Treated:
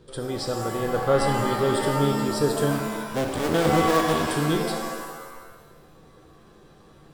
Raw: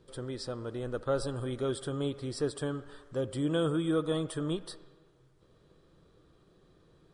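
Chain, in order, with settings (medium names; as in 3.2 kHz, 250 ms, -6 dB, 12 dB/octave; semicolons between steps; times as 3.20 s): 2.71–4.31 s: cycle switcher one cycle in 2, muted; pitch-shifted reverb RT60 1.3 s, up +7 st, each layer -2 dB, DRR 4 dB; trim +8 dB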